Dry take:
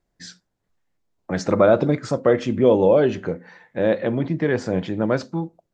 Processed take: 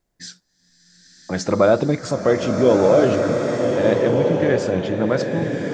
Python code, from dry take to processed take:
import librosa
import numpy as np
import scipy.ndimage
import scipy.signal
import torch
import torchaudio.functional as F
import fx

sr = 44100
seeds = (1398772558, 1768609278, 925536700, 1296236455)

y = fx.high_shelf(x, sr, hz=4800.0, db=7.0)
y = fx.rev_bloom(y, sr, seeds[0], attack_ms=1510, drr_db=1.5)